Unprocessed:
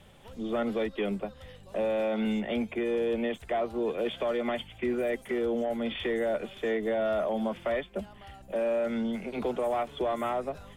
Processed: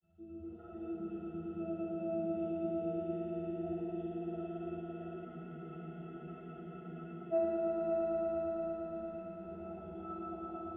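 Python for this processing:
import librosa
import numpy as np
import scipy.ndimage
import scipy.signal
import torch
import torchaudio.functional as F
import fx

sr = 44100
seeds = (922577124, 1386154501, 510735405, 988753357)

p1 = fx.local_reverse(x, sr, ms=234.0)
p2 = fx.transient(p1, sr, attack_db=-5, sustain_db=1)
p3 = fx.granulator(p2, sr, seeds[0], grain_ms=100.0, per_s=20.0, spray_ms=100.0, spread_st=0)
p4 = fx.octave_resonator(p3, sr, note='E', decay_s=0.45)
p5 = 10.0 ** (-25.5 / 20.0) * np.tanh(p4 / 10.0 ** (-25.5 / 20.0))
p6 = p5 + fx.echo_swell(p5, sr, ms=112, loudest=5, wet_db=-6.0, dry=0)
p7 = fx.rev_schroeder(p6, sr, rt60_s=1.4, comb_ms=32, drr_db=-3.5)
y = fx.spec_freeze(p7, sr, seeds[1], at_s=5.27, hold_s=2.06)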